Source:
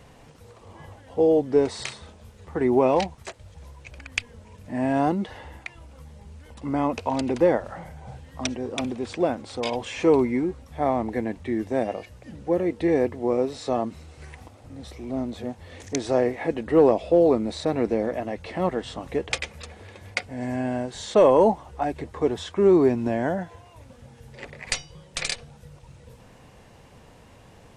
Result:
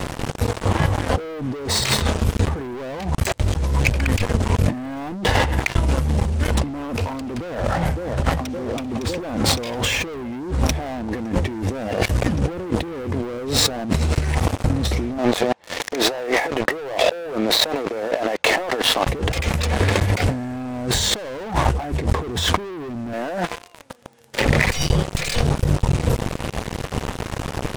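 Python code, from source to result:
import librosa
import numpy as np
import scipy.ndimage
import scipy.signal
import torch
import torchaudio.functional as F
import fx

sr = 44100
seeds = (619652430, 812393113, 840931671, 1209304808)

y = fx.echo_throw(x, sr, start_s=7.39, length_s=1.07, ms=560, feedback_pct=65, wet_db=-10.0)
y = fx.bandpass_edges(y, sr, low_hz=530.0, high_hz=4400.0, at=(15.17, 19.06), fade=0.02)
y = fx.highpass(y, sr, hz=350.0, slope=12, at=(23.13, 24.41))
y = fx.low_shelf(y, sr, hz=200.0, db=7.5)
y = fx.leveller(y, sr, passes=5)
y = fx.over_compress(y, sr, threshold_db=-23.0, ratio=-1.0)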